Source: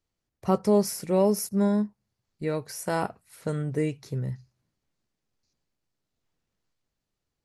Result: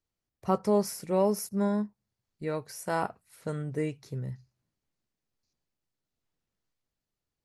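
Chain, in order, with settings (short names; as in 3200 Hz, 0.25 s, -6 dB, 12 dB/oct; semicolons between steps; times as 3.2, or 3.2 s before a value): dynamic EQ 1100 Hz, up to +5 dB, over -35 dBFS, Q 0.78; gain -5 dB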